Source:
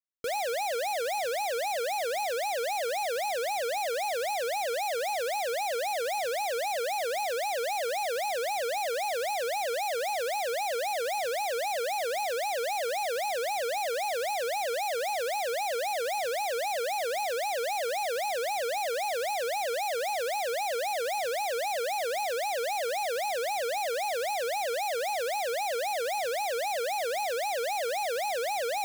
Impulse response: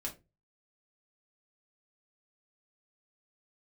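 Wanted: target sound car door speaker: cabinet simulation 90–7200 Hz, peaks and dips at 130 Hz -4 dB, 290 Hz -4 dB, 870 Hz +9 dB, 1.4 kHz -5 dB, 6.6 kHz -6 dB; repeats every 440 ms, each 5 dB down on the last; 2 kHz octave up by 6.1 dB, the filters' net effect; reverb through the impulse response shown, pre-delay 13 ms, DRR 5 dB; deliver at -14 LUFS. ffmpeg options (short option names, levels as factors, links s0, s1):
-filter_complex "[0:a]equalizer=f=2000:t=o:g=8.5,aecho=1:1:440|880|1320|1760|2200|2640|3080:0.562|0.315|0.176|0.0988|0.0553|0.031|0.0173,asplit=2[s0][s1];[1:a]atrim=start_sample=2205,adelay=13[s2];[s1][s2]afir=irnorm=-1:irlink=0,volume=0.562[s3];[s0][s3]amix=inputs=2:normalize=0,highpass=90,equalizer=f=130:t=q:w=4:g=-4,equalizer=f=290:t=q:w=4:g=-4,equalizer=f=870:t=q:w=4:g=9,equalizer=f=1400:t=q:w=4:g=-5,equalizer=f=6600:t=q:w=4:g=-6,lowpass=f=7200:w=0.5412,lowpass=f=7200:w=1.3066,volume=2.66"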